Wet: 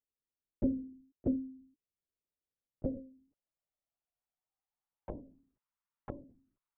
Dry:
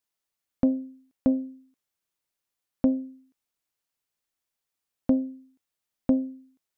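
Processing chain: in parallel at +1 dB: compressor, threshold -36 dBFS, peak gain reduction 17 dB; on the sum: band-pass sweep 320 Hz -> 1100 Hz, 1.86–5.71; LPC vocoder at 8 kHz whisper; gain -6.5 dB

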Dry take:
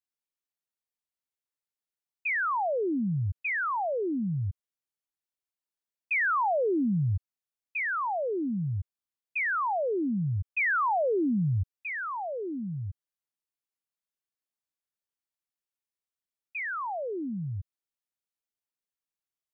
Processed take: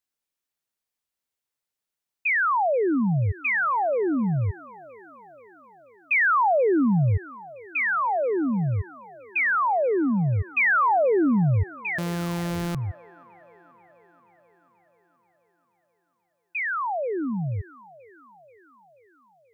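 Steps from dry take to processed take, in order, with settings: 11.98–12.75 sample sorter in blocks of 256 samples; on a send: band-limited delay 0.483 s, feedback 63%, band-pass 810 Hz, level -17.5 dB; on the sum: gain +6 dB

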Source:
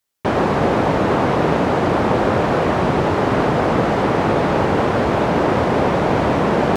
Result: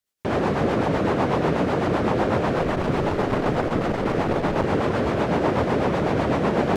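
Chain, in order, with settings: 2.56–4.63 added noise brown -32 dBFS; rotary speaker horn 8 Hz; core saturation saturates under 200 Hz; gain -2.5 dB

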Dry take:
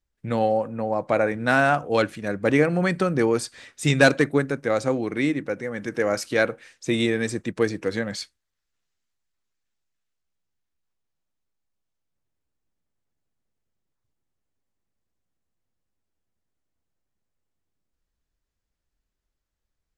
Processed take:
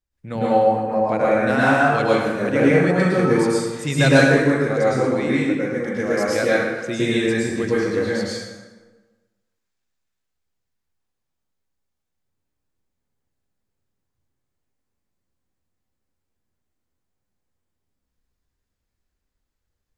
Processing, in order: plate-style reverb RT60 1.3 s, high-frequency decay 0.65×, pre-delay 95 ms, DRR -7.5 dB; gain -4.5 dB

